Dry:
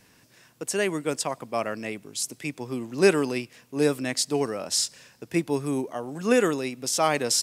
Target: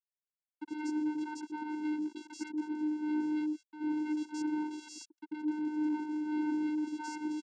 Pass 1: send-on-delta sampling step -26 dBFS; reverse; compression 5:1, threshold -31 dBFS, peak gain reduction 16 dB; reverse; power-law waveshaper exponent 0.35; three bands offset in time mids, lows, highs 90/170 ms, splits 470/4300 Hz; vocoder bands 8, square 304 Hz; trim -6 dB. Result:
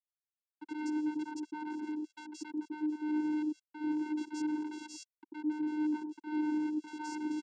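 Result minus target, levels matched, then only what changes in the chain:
send-on-delta sampling: distortion +11 dB
change: send-on-delta sampling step -37 dBFS

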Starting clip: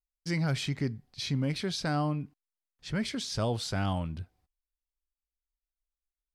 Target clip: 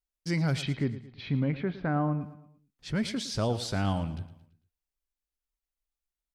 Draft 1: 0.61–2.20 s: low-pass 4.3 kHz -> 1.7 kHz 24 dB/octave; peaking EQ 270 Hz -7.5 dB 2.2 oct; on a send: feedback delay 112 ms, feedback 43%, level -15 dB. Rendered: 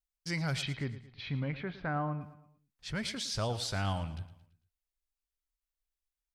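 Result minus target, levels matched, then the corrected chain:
250 Hz band -3.5 dB
0.61–2.20 s: low-pass 4.3 kHz -> 1.7 kHz 24 dB/octave; peaking EQ 270 Hz +2.5 dB 2.2 oct; on a send: feedback delay 112 ms, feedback 43%, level -15 dB

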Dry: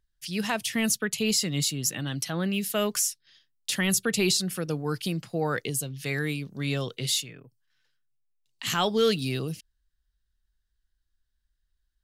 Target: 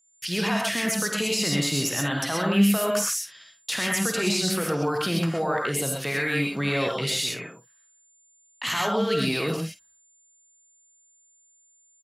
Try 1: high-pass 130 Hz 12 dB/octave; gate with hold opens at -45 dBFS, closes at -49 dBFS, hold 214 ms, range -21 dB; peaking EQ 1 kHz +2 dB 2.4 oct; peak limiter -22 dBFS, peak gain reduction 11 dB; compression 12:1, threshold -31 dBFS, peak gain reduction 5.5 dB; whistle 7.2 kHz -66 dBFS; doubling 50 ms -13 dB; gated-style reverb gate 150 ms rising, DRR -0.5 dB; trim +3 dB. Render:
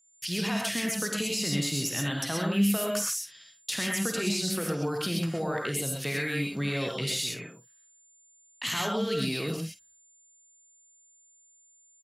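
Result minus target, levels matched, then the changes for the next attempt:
compression: peak gain reduction +5.5 dB; 1 kHz band -3.0 dB
change: peaking EQ 1 kHz +11.5 dB 2.4 oct; remove: compression 12:1, threshold -31 dBFS, peak gain reduction 5.5 dB

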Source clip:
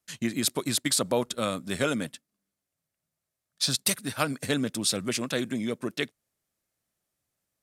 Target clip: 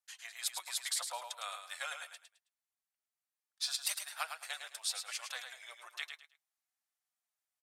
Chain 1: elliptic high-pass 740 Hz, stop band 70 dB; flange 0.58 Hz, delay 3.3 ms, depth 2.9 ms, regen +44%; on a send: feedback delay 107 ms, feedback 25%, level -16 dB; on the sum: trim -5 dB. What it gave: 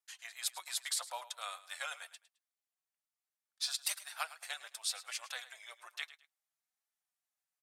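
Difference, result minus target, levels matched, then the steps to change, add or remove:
echo-to-direct -9 dB
change: feedback delay 107 ms, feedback 25%, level -7 dB

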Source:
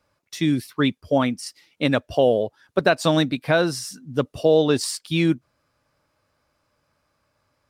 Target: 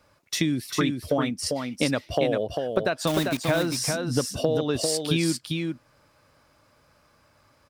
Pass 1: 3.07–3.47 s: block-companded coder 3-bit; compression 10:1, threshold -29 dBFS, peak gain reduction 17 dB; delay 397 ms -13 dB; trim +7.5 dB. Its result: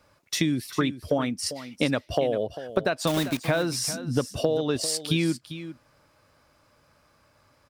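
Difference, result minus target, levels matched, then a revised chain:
echo-to-direct -8.5 dB
3.07–3.47 s: block-companded coder 3-bit; compression 10:1, threshold -29 dBFS, peak gain reduction 17 dB; delay 397 ms -4.5 dB; trim +7.5 dB

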